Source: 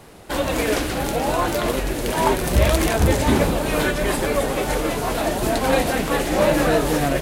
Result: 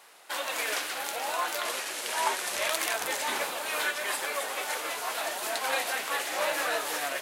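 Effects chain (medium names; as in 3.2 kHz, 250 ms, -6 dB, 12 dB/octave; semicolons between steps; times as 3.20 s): 1.65–2.68 s: one-bit delta coder 64 kbps, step -23.5 dBFS; high-pass 1 kHz 12 dB/octave; trim -4 dB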